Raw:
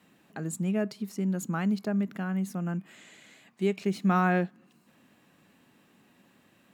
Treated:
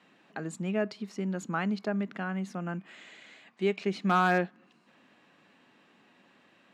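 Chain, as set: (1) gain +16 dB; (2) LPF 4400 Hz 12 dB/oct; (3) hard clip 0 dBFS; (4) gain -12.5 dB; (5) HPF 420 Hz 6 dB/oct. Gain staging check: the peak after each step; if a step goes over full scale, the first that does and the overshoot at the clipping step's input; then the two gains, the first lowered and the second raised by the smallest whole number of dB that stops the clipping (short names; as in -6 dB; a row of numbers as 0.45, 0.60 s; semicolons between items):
+4.0, +4.0, 0.0, -12.5, -13.5 dBFS; step 1, 4.0 dB; step 1 +12 dB, step 4 -8.5 dB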